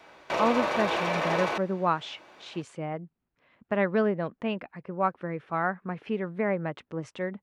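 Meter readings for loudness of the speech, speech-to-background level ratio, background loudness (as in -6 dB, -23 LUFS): -30.5 LUFS, -1.5 dB, -29.0 LUFS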